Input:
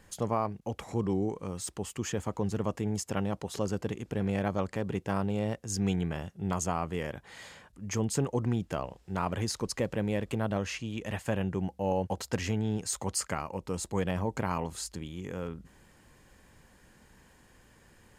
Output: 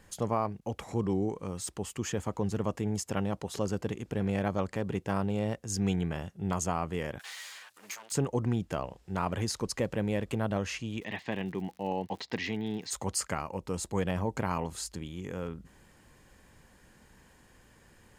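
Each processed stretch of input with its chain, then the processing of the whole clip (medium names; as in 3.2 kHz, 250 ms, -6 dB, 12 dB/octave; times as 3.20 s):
7.19–8.12 s: comb filter that takes the minimum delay 10 ms + high-pass 1.1 kHz + three bands compressed up and down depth 100%
11.00–12.90 s: cabinet simulation 190–4900 Hz, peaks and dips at 550 Hz -8 dB, 1.4 kHz -9 dB, 2 kHz +7 dB, 3.8 kHz +6 dB + crackle 79 per s -44 dBFS
whole clip: none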